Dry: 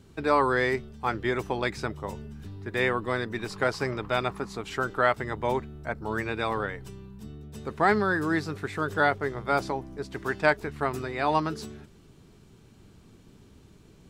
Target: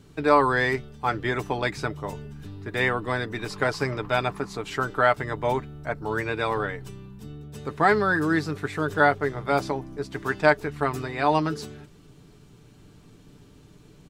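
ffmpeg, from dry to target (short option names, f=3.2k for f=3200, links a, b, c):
-af "aecho=1:1:6.8:0.4,volume=2dB"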